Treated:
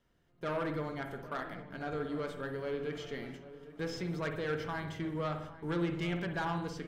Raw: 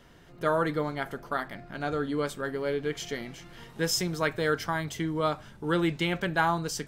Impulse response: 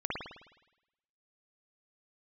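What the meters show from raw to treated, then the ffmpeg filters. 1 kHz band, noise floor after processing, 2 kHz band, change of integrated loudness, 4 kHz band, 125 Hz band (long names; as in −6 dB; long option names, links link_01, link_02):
−9.0 dB, −69 dBFS, −9.0 dB, −7.5 dB, −11.5 dB, −5.0 dB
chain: -filter_complex "[0:a]acrossover=split=4000[link_01][link_02];[link_02]acompressor=threshold=-55dB:ratio=4:attack=1:release=60[link_03];[link_01][link_03]amix=inputs=2:normalize=0,agate=range=-14dB:threshold=-43dB:ratio=16:detection=peak,asoftclip=type=tanh:threshold=-24dB,asplit=2[link_04][link_05];[link_05]adelay=803,lowpass=frequency=1500:poles=1,volume=-14.5dB,asplit=2[link_06][link_07];[link_07]adelay=803,lowpass=frequency=1500:poles=1,volume=0.49,asplit=2[link_08][link_09];[link_09]adelay=803,lowpass=frequency=1500:poles=1,volume=0.49,asplit=2[link_10][link_11];[link_11]adelay=803,lowpass=frequency=1500:poles=1,volume=0.49,asplit=2[link_12][link_13];[link_13]adelay=803,lowpass=frequency=1500:poles=1,volume=0.49[link_14];[link_04][link_06][link_08][link_10][link_12][link_14]amix=inputs=6:normalize=0,asplit=2[link_15][link_16];[1:a]atrim=start_sample=2205,afade=type=out:start_time=0.27:duration=0.01,atrim=end_sample=12348,lowshelf=frequency=400:gain=6[link_17];[link_16][link_17]afir=irnorm=-1:irlink=0,volume=-10dB[link_18];[link_15][link_18]amix=inputs=2:normalize=0,volume=-8.5dB"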